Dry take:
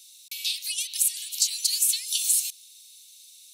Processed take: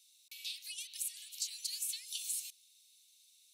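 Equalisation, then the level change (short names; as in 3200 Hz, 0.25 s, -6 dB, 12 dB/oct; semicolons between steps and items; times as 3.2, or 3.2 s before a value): high shelf 2100 Hz -10.5 dB; -6.0 dB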